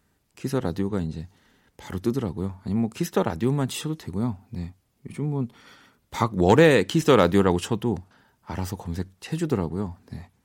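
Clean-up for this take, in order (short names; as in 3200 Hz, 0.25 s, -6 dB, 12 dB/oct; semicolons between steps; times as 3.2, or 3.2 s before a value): clip repair -5 dBFS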